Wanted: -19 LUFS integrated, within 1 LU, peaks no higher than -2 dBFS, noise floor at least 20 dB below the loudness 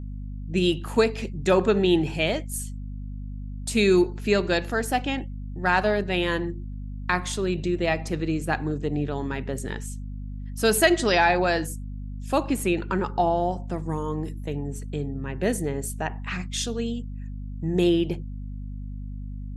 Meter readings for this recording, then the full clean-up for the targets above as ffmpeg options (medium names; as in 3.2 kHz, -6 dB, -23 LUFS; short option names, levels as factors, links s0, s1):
hum 50 Hz; highest harmonic 250 Hz; hum level -31 dBFS; loudness -25.0 LUFS; peak level -5.5 dBFS; loudness target -19.0 LUFS
-> -af "bandreject=f=50:t=h:w=6,bandreject=f=100:t=h:w=6,bandreject=f=150:t=h:w=6,bandreject=f=200:t=h:w=6,bandreject=f=250:t=h:w=6"
-af "volume=2,alimiter=limit=0.794:level=0:latency=1"